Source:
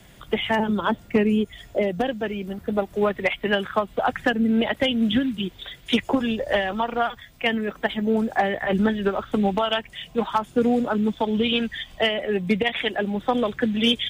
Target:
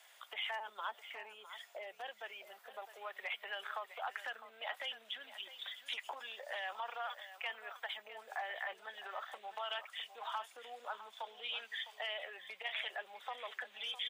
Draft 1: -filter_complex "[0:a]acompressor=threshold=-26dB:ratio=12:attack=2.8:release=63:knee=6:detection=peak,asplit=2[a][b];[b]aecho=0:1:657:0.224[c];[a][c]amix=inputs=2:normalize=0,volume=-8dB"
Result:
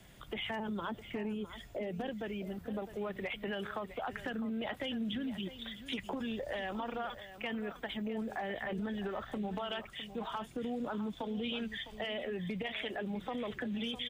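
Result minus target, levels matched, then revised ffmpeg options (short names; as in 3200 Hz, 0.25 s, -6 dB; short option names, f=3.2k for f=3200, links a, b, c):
1000 Hz band -3.5 dB
-filter_complex "[0:a]acompressor=threshold=-26dB:ratio=12:attack=2.8:release=63:knee=6:detection=peak,highpass=f=720:w=0.5412,highpass=f=720:w=1.3066,asplit=2[a][b];[b]aecho=0:1:657:0.224[c];[a][c]amix=inputs=2:normalize=0,volume=-8dB"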